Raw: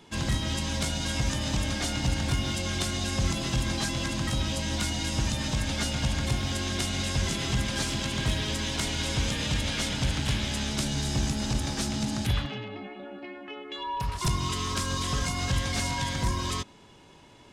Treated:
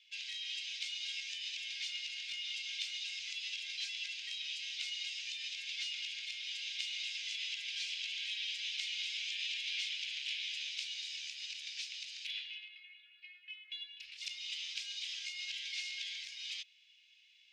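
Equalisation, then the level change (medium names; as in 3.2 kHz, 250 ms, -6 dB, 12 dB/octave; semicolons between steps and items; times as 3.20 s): elliptic high-pass 2.4 kHz, stop band 60 dB; distance through air 220 m; +1.5 dB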